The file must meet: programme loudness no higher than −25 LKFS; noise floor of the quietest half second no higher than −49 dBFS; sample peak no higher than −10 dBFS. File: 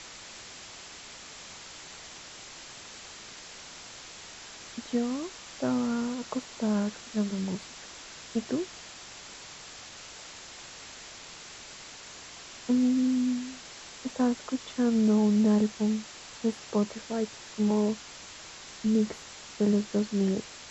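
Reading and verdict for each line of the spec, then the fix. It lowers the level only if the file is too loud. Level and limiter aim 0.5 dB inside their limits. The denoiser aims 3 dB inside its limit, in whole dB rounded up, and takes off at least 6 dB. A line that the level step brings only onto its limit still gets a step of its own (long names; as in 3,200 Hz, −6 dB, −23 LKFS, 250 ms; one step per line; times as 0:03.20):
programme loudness −29.0 LKFS: in spec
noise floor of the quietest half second −46 dBFS: out of spec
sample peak −15.5 dBFS: in spec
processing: broadband denoise 6 dB, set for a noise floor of −46 dBFS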